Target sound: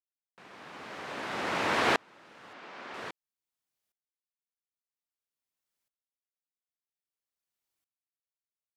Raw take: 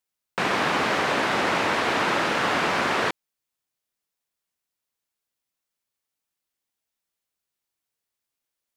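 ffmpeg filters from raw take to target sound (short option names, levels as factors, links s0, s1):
-filter_complex "[0:a]asettb=1/sr,asplit=3[s0][s1][s2];[s0]atrim=end=2.534[s3];[s1]atrim=start=2.53:end=2.94,asetpts=PTS-STARTPTS,afade=t=in:d=0.004:c=qsin,afade=t=out:st=0.406:d=0.004:c=qsin,acrossover=split=180 6200:gain=0.126 1 0.2[s4][s5][s6];[s4][s5][s6]amix=inputs=3:normalize=0[s7];[s2]atrim=start=2.936[s8];[s3][s7]acrossfade=d=0.004:c1=hsin:c2=qsin[s9];[s9][s8]acrossfade=d=0.004:c1=qsin:c2=hsin,aeval=exprs='val(0)*pow(10,-37*if(lt(mod(-0.51*n/s,1),2*abs(-0.51)/1000),1-mod(-0.51*n/s,1)/(2*abs(-0.51)/1000),(mod(-0.51*n/s,1)-2*abs(-0.51)/1000)/(1-2*abs(-0.51)/1000))/20)':c=same"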